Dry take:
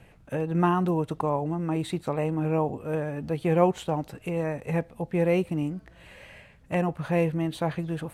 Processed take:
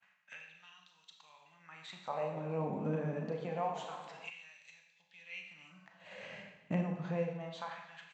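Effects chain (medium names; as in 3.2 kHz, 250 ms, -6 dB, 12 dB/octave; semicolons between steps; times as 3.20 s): de-hum 70.7 Hz, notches 39; expander -44 dBFS; resonant low shelf 250 Hz +10.5 dB, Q 3; compression 2.5:1, threshold -34 dBFS, peak gain reduction 18.5 dB; LFO high-pass sine 0.26 Hz 310–4000 Hz; Schroeder reverb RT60 0.83 s, combs from 29 ms, DRR 3.5 dB; resampled via 16 kHz; speakerphone echo 280 ms, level -19 dB; 2.01–4.30 s: modulated delay 119 ms, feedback 74%, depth 171 cents, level -14 dB; trim +1 dB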